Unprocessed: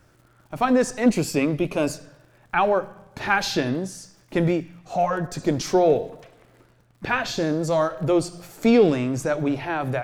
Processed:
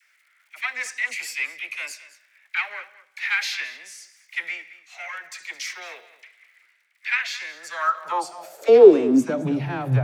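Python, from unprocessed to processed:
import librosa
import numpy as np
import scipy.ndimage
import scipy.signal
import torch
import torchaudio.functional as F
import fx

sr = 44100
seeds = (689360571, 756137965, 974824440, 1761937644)

p1 = fx.diode_clip(x, sr, knee_db=-14.5)
p2 = fx.dispersion(p1, sr, late='lows', ms=44.0, hz=860.0)
p3 = fx.filter_sweep_highpass(p2, sr, from_hz=2100.0, to_hz=120.0, start_s=7.51, end_s=9.82, q=6.5)
p4 = p3 + fx.echo_single(p3, sr, ms=216, db=-17.0, dry=0)
y = p4 * 10.0 ** (-3.0 / 20.0)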